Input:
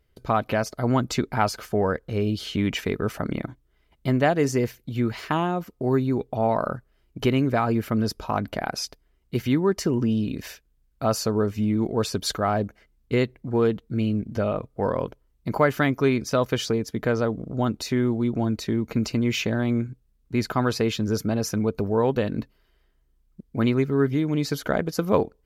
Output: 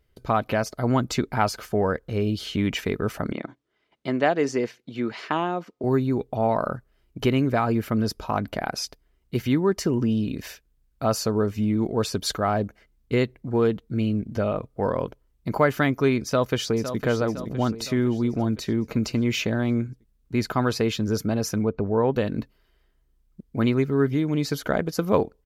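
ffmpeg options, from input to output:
-filter_complex "[0:a]asettb=1/sr,asplit=3[s0][s1][s2];[s0]atrim=end=3.324[s3];[s1]atrim=start=3.32:end=5.84,asetpts=PTS-STARTPTS,afade=t=in:d=0.004:c=qsin,afade=t=out:st=2.516:d=0.004:c=qsin,highpass=240,lowpass=5700[s4];[s2]atrim=start=5.836[s5];[s3][s4]acrossfade=d=0.004:c1=hsin:c2=qsin[s6];[s6][s5]acrossfade=d=0.004:c1=qsin:c2=hsin,asplit=2[s7][s8];[s8]afade=t=in:st=16.25:d=0.01,afade=t=out:st=16.99:d=0.01,aecho=0:1:510|1020|1530|2040|2550|3060:0.316228|0.173925|0.0956589|0.0526124|0.0289368|0.0159152[s9];[s7][s9]amix=inputs=2:normalize=0,asettb=1/sr,asplit=3[s10][s11][s12];[s10]atrim=end=21.644[s13];[s11]atrim=start=21.64:end=22.14,asetpts=PTS-STARTPTS,afade=t=in:d=0.004:c=qsin,afade=t=out:st=0.496:d=0.004:c=qsin,lowpass=2200[s14];[s12]atrim=start=22.136[s15];[s13][s14]acrossfade=d=0.004:c1=hsin:c2=qsin[s16];[s16][s15]acrossfade=d=0.004:c1=qsin:c2=hsin"

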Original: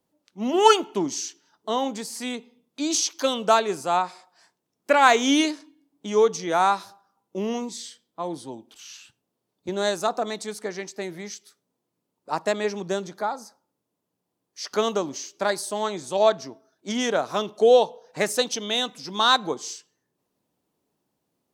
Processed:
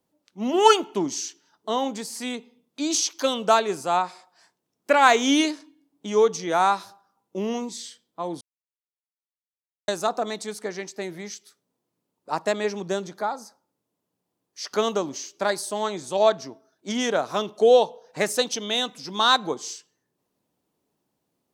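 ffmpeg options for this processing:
-filter_complex "[0:a]asplit=3[s0][s1][s2];[s0]atrim=end=8.41,asetpts=PTS-STARTPTS,afade=t=out:st=8.406:d=0.004:c=hsin[s3];[s1]atrim=start=8.41:end=9.88,asetpts=PTS-STARTPTS,volume=0[s4];[s2]atrim=start=9.88,asetpts=PTS-STARTPTS,afade=t=in:d=0.004:c=hsin[s5];[s3][s4][s5]concat=n=3:v=0:a=1"

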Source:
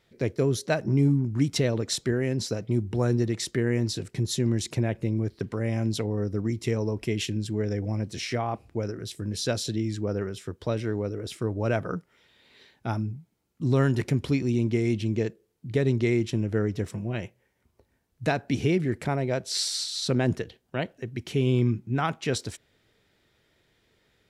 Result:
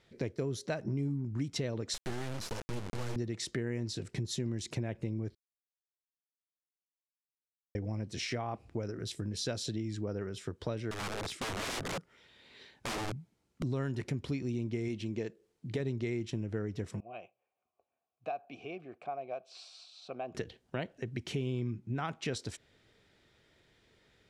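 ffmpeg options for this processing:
-filter_complex "[0:a]asettb=1/sr,asplit=3[s0][s1][s2];[s0]atrim=end=1.944[s3];[s1]atrim=start=1.94:end=3.16,asetpts=PTS-STARTPTS,afade=t=in:d=0.004:c=qsin,afade=t=out:st=1.216:d=0.004:c=qsin,acrusher=bits=3:dc=4:mix=0:aa=0.000001[s4];[s2]atrim=start=3.156[s5];[s3][s4]acrossfade=d=0.004:c1=hsin:c2=qsin[s6];[s6][s5]acrossfade=d=0.004:c1=qsin:c2=hsin,asettb=1/sr,asplit=3[s7][s8][s9];[s7]atrim=end=10.914[s10];[s8]atrim=start=10.91:end=13.63,asetpts=PTS-STARTPTS,afade=t=in:d=0.004:c=qsin,afade=t=out:st=2.716:d=0.004:c=qsin,aeval=exprs='(mod(28.2*val(0)+1,2)-1)/28.2':c=same[s11];[s9]atrim=start=13.626[s12];[s10][s11]acrossfade=d=0.004:c1=hsin:c2=qsin[s13];[s13][s12]acrossfade=d=0.004:c1=qsin:c2=hsin,asettb=1/sr,asplit=3[s14][s15][s16];[s14]atrim=end=14.884[s17];[s15]atrim=start=14.88:end=15.8,asetpts=PTS-STARTPTS,afade=t=in:d=0.004:c=qsin,afade=t=out:st=0.916:d=0.004:c=qsin,equalizer=f=74:t=o:w=2.4:g=-6.5[s18];[s16]atrim=start=15.796[s19];[s17][s18]acrossfade=d=0.004:c1=hsin:c2=qsin[s20];[s20][s19]acrossfade=d=0.004:c1=qsin:c2=hsin,asettb=1/sr,asplit=3[s21][s22][s23];[s21]atrim=end=17.004[s24];[s22]atrim=start=17:end=20.35,asetpts=PTS-STARTPTS,afade=t=in:d=0.004:c=qsin,afade=t=out:st=3.346:d=0.004:c=qsin,asplit=3[s25][s26][s27];[s25]bandpass=f=730:t=q:w=8,volume=1[s28];[s26]bandpass=f=1090:t=q:w=8,volume=0.501[s29];[s27]bandpass=f=2440:t=q:w=8,volume=0.355[s30];[s28][s29][s30]amix=inputs=3:normalize=0[s31];[s23]atrim=start=20.346[s32];[s24][s31]acrossfade=d=0.004:c1=hsin:c2=qsin[s33];[s33][s32]acrossfade=d=0.004:c1=qsin:c2=hsin,asplit=3[s34][s35][s36];[s34]atrim=end=5.35,asetpts=PTS-STARTPTS,afade=t=out:st=5.346:d=0.004:c=hsin[s37];[s35]atrim=start=5.35:end=7.75,asetpts=PTS-STARTPTS,volume=0[s38];[s36]atrim=start=7.75,asetpts=PTS-STARTPTS,afade=t=in:d=0.004:c=hsin[s39];[s37][s38][s39]concat=n=3:v=0:a=1,lowpass=9100,acompressor=threshold=0.0178:ratio=3"

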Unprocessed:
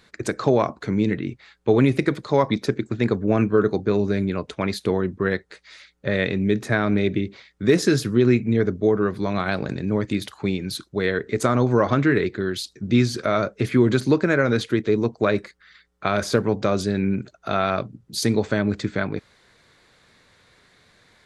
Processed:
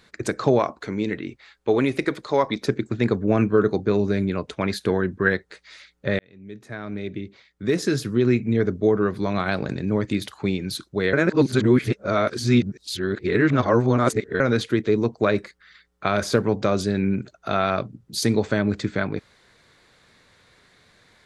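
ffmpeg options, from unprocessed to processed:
-filter_complex "[0:a]asettb=1/sr,asplit=3[s0][s1][s2];[s0]atrim=end=0.594[s3];[s1]atrim=start=0.59:end=2.63,asetpts=PTS-STARTPTS,afade=t=in:d=0.004:c=qsin,afade=t=out:st=2.036:d=0.004:c=qsin,equalizer=f=130:w=0.75:g=-9.5[s4];[s2]atrim=start=2.626[s5];[s3][s4]acrossfade=d=0.004:c1=hsin:c2=qsin[s6];[s6][s5]acrossfade=d=0.004:c1=qsin:c2=hsin,asettb=1/sr,asplit=3[s7][s8][s9];[s7]atrim=end=4.704[s10];[s8]atrim=start=4.7:end=5.32,asetpts=PTS-STARTPTS,afade=t=in:d=0.004:c=qsin,afade=t=out:st=0.616:d=0.004:c=qsin,equalizer=f=1600:t=o:w=0.22:g=12[s11];[s9]atrim=start=5.316[s12];[s10][s11]acrossfade=d=0.004:c1=hsin:c2=qsin[s13];[s13][s12]acrossfade=d=0.004:c1=qsin:c2=hsin,asplit=4[s14][s15][s16][s17];[s14]atrim=end=6.19,asetpts=PTS-STARTPTS,afade=t=out:st=6.186:d=0.004:c=hsin[s18];[s15]atrim=start=6.19:end=11.132,asetpts=PTS-STARTPTS,afade=t=in:d=2.64[s19];[s16]atrim=start=11.128:end=14.402,asetpts=PTS-STARTPTS,areverse[s20];[s17]atrim=start=14.398[s21];[s18][s19]concat=n=2:v=0:a=1[s22];[s22][s20]acrossfade=d=0.004:c1=hsin:c2=hsin[s23];[s23][s21]acrossfade=d=0.004:c1=hsin:c2=hsin"

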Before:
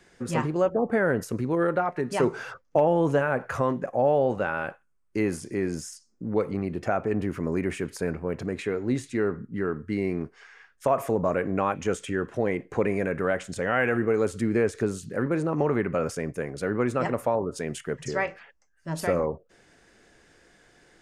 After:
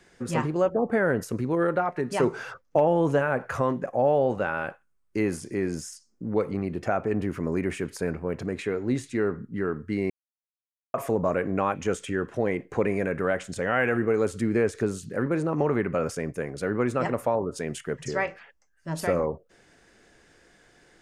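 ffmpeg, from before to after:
-filter_complex "[0:a]asplit=3[s0][s1][s2];[s0]atrim=end=10.1,asetpts=PTS-STARTPTS,afade=t=out:st=10.096:d=0.004:c=hsin[s3];[s1]atrim=start=10.1:end=10.94,asetpts=PTS-STARTPTS,volume=0[s4];[s2]atrim=start=10.94,asetpts=PTS-STARTPTS,afade=t=in:d=0.004:c=hsin[s5];[s3][s4][s5]concat=n=3:v=0:a=1"

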